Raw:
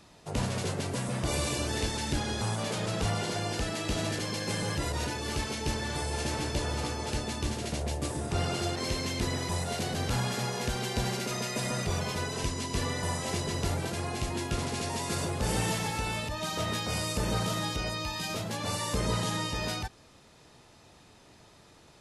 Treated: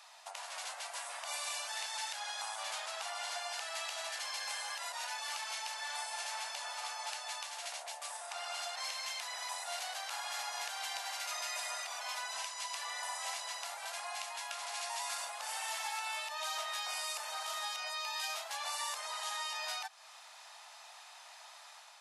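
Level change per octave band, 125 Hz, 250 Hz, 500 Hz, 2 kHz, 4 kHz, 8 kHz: below −40 dB, below −40 dB, −15.0 dB, −4.0 dB, −4.0 dB, −4.0 dB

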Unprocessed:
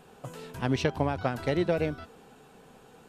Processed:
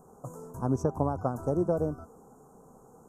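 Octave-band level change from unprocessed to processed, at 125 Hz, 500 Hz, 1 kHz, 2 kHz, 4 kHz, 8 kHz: 0.0 dB, −0.5 dB, −1.0 dB, −17.5 dB, below −20 dB, can't be measured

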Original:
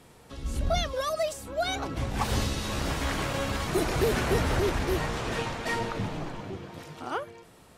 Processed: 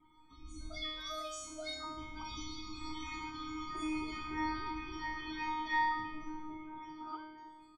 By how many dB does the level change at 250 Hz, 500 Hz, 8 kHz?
−9.0, −21.0, −13.0 decibels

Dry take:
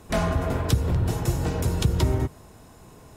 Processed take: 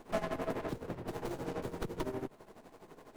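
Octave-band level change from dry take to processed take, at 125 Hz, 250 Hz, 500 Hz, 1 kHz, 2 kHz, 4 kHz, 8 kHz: −22.5, −11.5, −8.0, −9.5, −10.5, −16.0, −19.0 decibels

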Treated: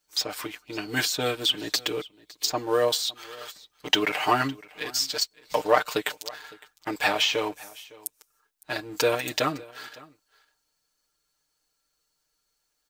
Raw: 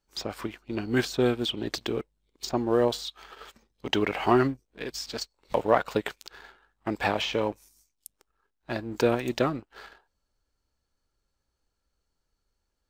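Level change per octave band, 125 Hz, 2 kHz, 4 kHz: −5.5, +5.0, +8.0 decibels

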